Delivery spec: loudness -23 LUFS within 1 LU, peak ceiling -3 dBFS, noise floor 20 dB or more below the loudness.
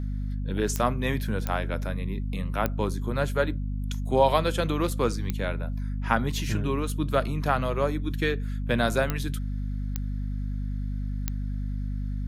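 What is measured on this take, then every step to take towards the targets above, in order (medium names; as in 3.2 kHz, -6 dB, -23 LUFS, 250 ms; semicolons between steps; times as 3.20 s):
clicks found 7; hum 50 Hz; highest harmonic 250 Hz; hum level -27 dBFS; loudness -28.5 LUFS; peak level -7.0 dBFS; loudness target -23.0 LUFS
-> de-click; de-hum 50 Hz, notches 5; trim +5.5 dB; peak limiter -3 dBFS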